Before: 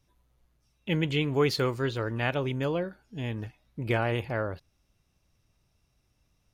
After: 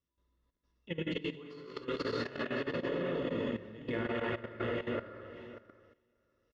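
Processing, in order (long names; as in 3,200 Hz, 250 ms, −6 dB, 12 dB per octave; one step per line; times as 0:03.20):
feedback delay that plays each chunk backwards 294 ms, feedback 46%, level −2 dB
low-pass filter 3,900 Hz 12 dB per octave
parametric band 800 Hz −5.5 dB 0.7 octaves
notch filter 2,400 Hz, Q 5.9
reverb whose tail is shaped and stops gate 310 ms flat, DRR −5 dB
noise gate −48 dBFS, range −6 dB
compressor whose output falls as the input rises −24 dBFS, ratio −0.5
parametric band 130 Hz −11 dB 0.44 octaves
mains-hum notches 50/100/150/200 Hz
notch comb filter 780 Hz
single-tap delay 208 ms −17.5 dB
output level in coarse steps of 14 dB
level −6 dB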